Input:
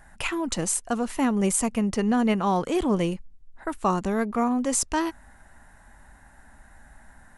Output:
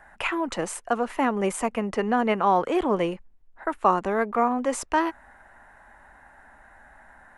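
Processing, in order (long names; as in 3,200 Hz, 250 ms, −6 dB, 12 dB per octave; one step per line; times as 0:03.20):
three-way crossover with the lows and the highs turned down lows −13 dB, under 360 Hz, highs −15 dB, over 2,700 Hz
level +5 dB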